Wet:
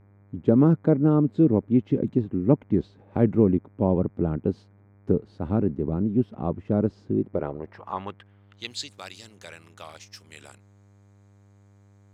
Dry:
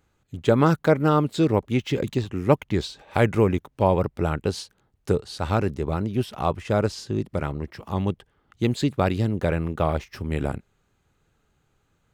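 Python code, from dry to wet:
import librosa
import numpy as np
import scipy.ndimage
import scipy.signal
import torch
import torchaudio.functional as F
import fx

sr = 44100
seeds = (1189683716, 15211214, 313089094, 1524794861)

y = fx.filter_sweep_bandpass(x, sr, from_hz=250.0, to_hz=6500.0, start_s=7.1, end_s=8.91, q=1.5)
y = fx.dmg_buzz(y, sr, base_hz=100.0, harmonics=24, level_db=-62.0, tilt_db=-7, odd_only=False)
y = fx.low_shelf(y, sr, hz=130.0, db=5.0)
y = y * 10.0 ** (4.0 / 20.0)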